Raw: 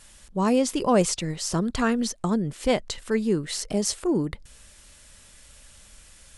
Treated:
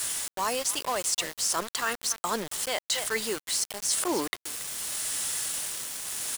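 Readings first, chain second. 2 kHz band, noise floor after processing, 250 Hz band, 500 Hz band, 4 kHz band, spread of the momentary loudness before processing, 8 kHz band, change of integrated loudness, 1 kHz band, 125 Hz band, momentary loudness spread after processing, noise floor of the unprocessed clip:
+2.0 dB, under -85 dBFS, -14.5 dB, -8.5 dB, +3.5 dB, 6 LU, +5.5 dB, -3.5 dB, -1.5 dB, -19.5 dB, 5 LU, -52 dBFS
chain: tremolo 0.76 Hz, depth 46%; high-pass 870 Hz 12 dB/octave; treble shelf 5.8 kHz +11.5 dB; band-stop 2.4 kHz, Q 9.6; speakerphone echo 280 ms, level -20 dB; reverse; compression 16:1, threshold -38 dBFS, peak gain reduction 22.5 dB; reverse; bit crusher 8-bit; in parallel at +1 dB: peak limiter -33 dBFS, peak gain reduction 8 dB; on the sum: trim +8 dB

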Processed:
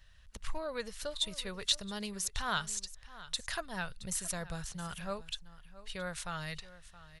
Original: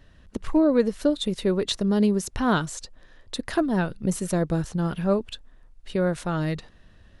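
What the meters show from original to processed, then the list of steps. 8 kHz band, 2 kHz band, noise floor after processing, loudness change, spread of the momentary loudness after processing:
-0.5 dB, -5.5 dB, -57 dBFS, -12.5 dB, 16 LU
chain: amplifier tone stack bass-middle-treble 10-0-10; delay 671 ms -17 dB

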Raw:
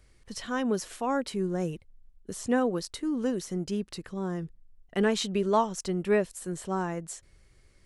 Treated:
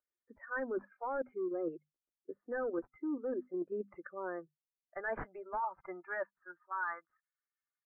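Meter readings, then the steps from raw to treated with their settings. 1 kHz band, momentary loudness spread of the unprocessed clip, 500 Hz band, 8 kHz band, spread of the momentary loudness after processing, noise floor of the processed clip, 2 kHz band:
-7.5 dB, 12 LU, -9.0 dB, under -40 dB, 12 LU, under -85 dBFS, -3.5 dB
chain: expander on every frequency bin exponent 1.5; in parallel at +2.5 dB: level held to a coarse grid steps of 17 dB; on the sum: tilt shelf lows -9.5 dB, about 720 Hz; comb 3.4 ms, depth 37%; high-pass sweep 390 Hz -> 1.2 kHz, 3.44–6.90 s; hum notches 50/100/150/200/250 Hz; saturation -20 dBFS, distortion -6 dB; steep low-pass 1.8 kHz 72 dB/octave; reverse; compression 6:1, threshold -38 dBFS, peak gain reduction 15.5 dB; reverse; bass shelf 86 Hz +8 dB; spectral noise reduction 18 dB; trim +2.5 dB

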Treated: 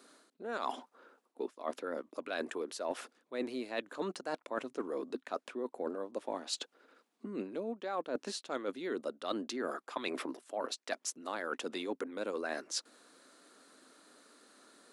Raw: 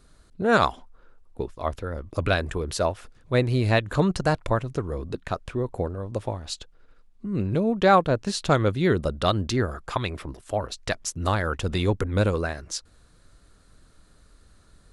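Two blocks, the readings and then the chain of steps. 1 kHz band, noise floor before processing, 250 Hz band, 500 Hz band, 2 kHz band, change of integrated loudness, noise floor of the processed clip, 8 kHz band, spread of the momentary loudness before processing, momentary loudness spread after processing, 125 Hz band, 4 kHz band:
-14.5 dB, -57 dBFS, -14.0 dB, -12.5 dB, -13.5 dB, -14.0 dB, -81 dBFS, -7.5 dB, 12 LU, 4 LU, -34.0 dB, -10.0 dB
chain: Chebyshev high-pass 250 Hz, order 4; reverse; compression 16:1, threshold -36 dBFS, peak gain reduction 24 dB; reverse; trim +2.5 dB

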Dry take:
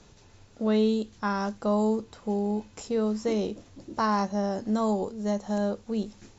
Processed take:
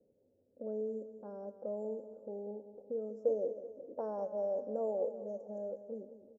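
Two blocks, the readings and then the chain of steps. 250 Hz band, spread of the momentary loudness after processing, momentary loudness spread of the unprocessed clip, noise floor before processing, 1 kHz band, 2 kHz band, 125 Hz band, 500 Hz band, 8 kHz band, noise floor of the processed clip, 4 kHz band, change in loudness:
-20.5 dB, 12 LU, 7 LU, -56 dBFS, -18.5 dB, under -30 dB, under -20 dB, -7.0 dB, no reading, -73 dBFS, under -40 dB, -11.5 dB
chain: vowel filter e; level-controlled noise filter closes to 370 Hz, open at -36.5 dBFS; elliptic band-stop 1.1–6.3 kHz, stop band 40 dB; peaking EQ 250 Hz +9 dB 0.31 oct; in parallel at -1.5 dB: compression, threshold -50 dBFS, peak gain reduction 17.5 dB; on the sum: time-frequency box 3.24–5.16 s, 420–3200 Hz +7 dB; on a send: feedback delay 192 ms, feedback 49%, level -12.5 dB; on the sum: trim -2.5 dB

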